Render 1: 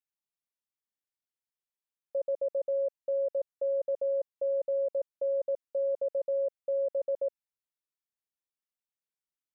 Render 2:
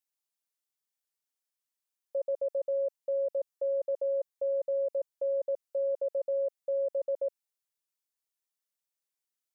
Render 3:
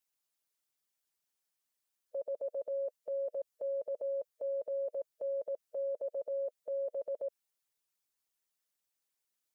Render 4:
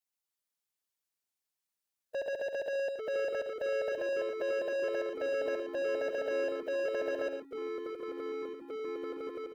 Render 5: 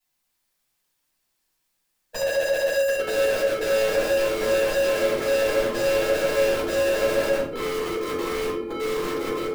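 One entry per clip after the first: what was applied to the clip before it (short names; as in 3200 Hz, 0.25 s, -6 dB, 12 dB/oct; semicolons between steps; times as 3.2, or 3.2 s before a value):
tone controls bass -10 dB, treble +6 dB
harmonic-percussive split harmonic -10 dB; limiter -38 dBFS, peak gain reduction 11 dB; gain +6.5 dB
sample leveller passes 3; tapped delay 73/115 ms -9/-9 dB; echoes that change speed 0.285 s, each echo -4 st, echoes 3, each echo -6 dB
in parallel at -3.5 dB: wrapped overs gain 35 dB; on the sum: shoebox room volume 410 m³, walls furnished, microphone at 8.3 m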